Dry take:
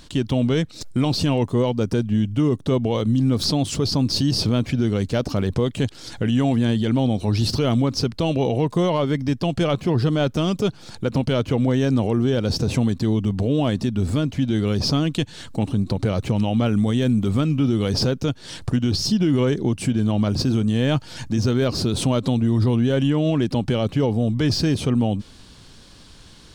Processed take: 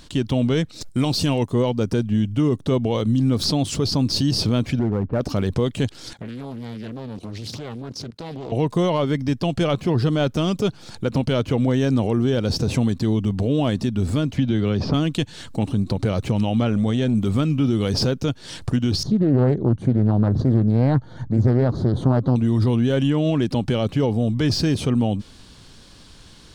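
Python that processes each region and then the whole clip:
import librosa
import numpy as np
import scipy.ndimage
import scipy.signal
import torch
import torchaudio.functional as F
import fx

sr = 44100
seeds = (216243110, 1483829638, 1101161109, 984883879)

y = fx.chain(x, sr, fx.high_shelf(hz=5000.0, db=8.0),
    fx.upward_expand(threshold_db=-31.0, expansion=1.5), at=(0.89, 1.51))
y = fx.chain(y, sr, fx.lowpass(hz=1400.0, slope=24),
    fx.clip_hard(threshold_db=-15.5), at=(4.79, 5.21))
y = fx.chain(y, sr, fx.highpass(hz=100.0, slope=24),
    fx.level_steps(step_db=16),
    fx.doppler_dist(depth_ms=0.63), at=(6.13, 8.52))
y = fx.chain(y, sr, fx.bessel_lowpass(hz=3400.0, order=2),
    fx.band_squash(depth_pct=100), at=(14.37, 14.94))
y = fx.chain(y, sr, fx.bessel_lowpass(hz=7000.0, order=4),
    fx.transient(attack_db=-11, sustain_db=1), at=(16.63, 17.15))
y = fx.chain(y, sr, fx.moving_average(points=17),
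    fx.peak_eq(hz=120.0, db=6.0, octaves=0.72),
    fx.doppler_dist(depth_ms=0.48), at=(19.03, 22.36))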